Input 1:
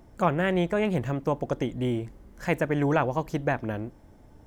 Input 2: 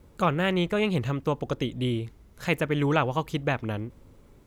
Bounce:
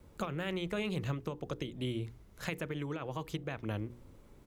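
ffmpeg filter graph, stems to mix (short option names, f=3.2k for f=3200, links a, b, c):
-filter_complex "[0:a]asplit=3[a][b][c];[a]bandpass=f=300:t=q:w=8,volume=0dB[d];[b]bandpass=f=870:t=q:w=8,volume=-6dB[e];[c]bandpass=f=2.24k:t=q:w=8,volume=-9dB[f];[d][e][f]amix=inputs=3:normalize=0,volume=-14.5dB,asplit=2[g][h];[1:a]alimiter=limit=-18dB:level=0:latency=1:release=28,adelay=0.7,volume=-3dB[i];[h]apad=whole_len=197124[j];[i][j]sidechaincompress=threshold=-50dB:ratio=8:attack=16:release=554[k];[g][k]amix=inputs=2:normalize=0,acrossover=split=130|3000[l][m][n];[m]acompressor=threshold=-35dB:ratio=2[o];[l][o][n]amix=inputs=3:normalize=0,bandreject=f=60:t=h:w=6,bandreject=f=120:t=h:w=6,bandreject=f=180:t=h:w=6,bandreject=f=240:t=h:w=6,bandreject=f=300:t=h:w=6,bandreject=f=360:t=h:w=6,bandreject=f=420:t=h:w=6,bandreject=f=480:t=h:w=6"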